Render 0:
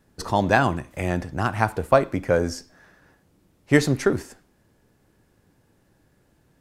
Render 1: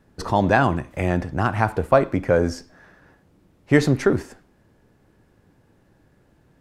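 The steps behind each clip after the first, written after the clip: high shelf 4200 Hz -9.5 dB; in parallel at -2 dB: limiter -14 dBFS, peak gain reduction 11 dB; on the sum: gain -1 dB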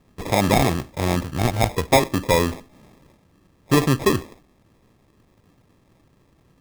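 sample-and-hold 30×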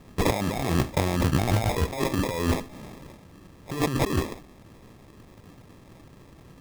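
negative-ratio compressor -27 dBFS, ratio -1; gain +2 dB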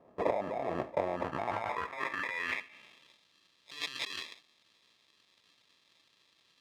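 band-pass sweep 640 Hz -> 3800 Hz, 1.08–3.21; dynamic EQ 2100 Hz, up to +6 dB, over -55 dBFS, Q 1.2; notch 780 Hz, Q 12

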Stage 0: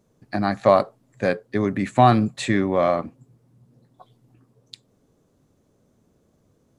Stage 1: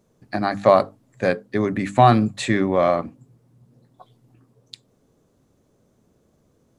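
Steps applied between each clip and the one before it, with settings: notches 50/100/150/200/250/300 Hz; gain +1.5 dB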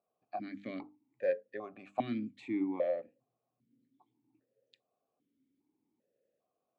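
vowel sequencer 2.5 Hz; gain -7 dB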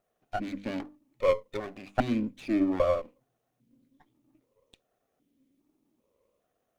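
minimum comb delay 0.32 ms; gain +8 dB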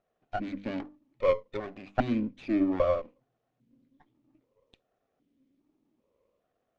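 air absorption 130 m

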